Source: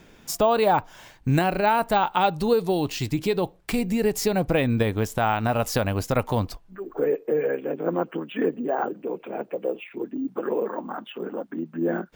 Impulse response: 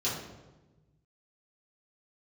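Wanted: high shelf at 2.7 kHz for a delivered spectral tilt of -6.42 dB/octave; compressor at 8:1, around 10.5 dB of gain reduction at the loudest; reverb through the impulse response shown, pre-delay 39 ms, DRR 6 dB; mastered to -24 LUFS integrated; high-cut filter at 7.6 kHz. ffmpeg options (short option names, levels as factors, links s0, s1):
-filter_complex "[0:a]lowpass=7600,highshelf=f=2700:g=-7.5,acompressor=threshold=0.0447:ratio=8,asplit=2[s0][s1];[1:a]atrim=start_sample=2205,adelay=39[s2];[s1][s2]afir=irnorm=-1:irlink=0,volume=0.211[s3];[s0][s3]amix=inputs=2:normalize=0,volume=2.24"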